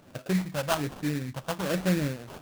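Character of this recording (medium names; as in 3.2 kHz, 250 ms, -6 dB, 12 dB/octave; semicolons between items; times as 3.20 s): phasing stages 4, 1.2 Hz, lowest notch 350–1600 Hz; aliases and images of a low sample rate 2.1 kHz, jitter 20%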